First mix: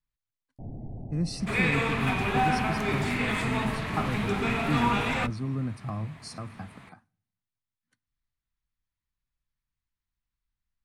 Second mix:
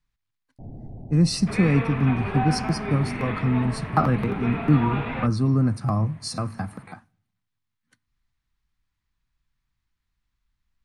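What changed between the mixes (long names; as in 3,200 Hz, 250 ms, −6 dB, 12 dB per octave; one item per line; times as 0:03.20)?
speech +10.5 dB
second sound: add high-frequency loss of the air 440 metres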